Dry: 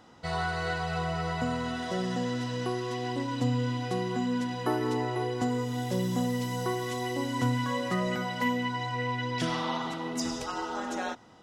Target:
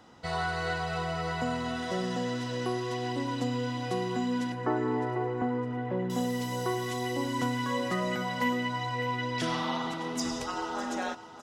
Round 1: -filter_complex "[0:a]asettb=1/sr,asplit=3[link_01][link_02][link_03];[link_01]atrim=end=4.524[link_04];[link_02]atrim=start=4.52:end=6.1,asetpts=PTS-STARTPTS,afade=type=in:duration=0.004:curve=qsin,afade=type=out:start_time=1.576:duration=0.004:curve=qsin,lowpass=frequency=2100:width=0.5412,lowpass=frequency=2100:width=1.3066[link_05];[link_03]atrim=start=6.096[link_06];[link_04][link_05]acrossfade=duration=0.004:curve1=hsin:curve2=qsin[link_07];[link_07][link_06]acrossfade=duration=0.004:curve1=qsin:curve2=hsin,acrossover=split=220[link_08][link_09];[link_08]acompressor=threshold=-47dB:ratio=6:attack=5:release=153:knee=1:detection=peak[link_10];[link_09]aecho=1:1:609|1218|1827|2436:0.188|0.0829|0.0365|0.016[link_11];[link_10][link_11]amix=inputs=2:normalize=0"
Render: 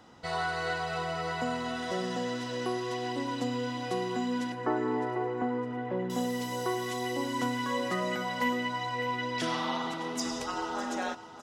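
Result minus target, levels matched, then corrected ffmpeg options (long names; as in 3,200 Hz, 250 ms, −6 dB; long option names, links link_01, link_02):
downward compressor: peak gain reduction +8.5 dB
-filter_complex "[0:a]asettb=1/sr,asplit=3[link_01][link_02][link_03];[link_01]atrim=end=4.524[link_04];[link_02]atrim=start=4.52:end=6.1,asetpts=PTS-STARTPTS,afade=type=in:duration=0.004:curve=qsin,afade=type=out:start_time=1.576:duration=0.004:curve=qsin,lowpass=frequency=2100:width=0.5412,lowpass=frequency=2100:width=1.3066[link_05];[link_03]atrim=start=6.096[link_06];[link_04][link_05]acrossfade=duration=0.004:curve1=hsin:curve2=qsin[link_07];[link_07][link_06]acrossfade=duration=0.004:curve1=qsin:curve2=hsin,acrossover=split=220[link_08][link_09];[link_08]acompressor=threshold=-37dB:ratio=6:attack=5:release=153:knee=1:detection=peak[link_10];[link_09]aecho=1:1:609|1218|1827|2436:0.188|0.0829|0.0365|0.016[link_11];[link_10][link_11]amix=inputs=2:normalize=0"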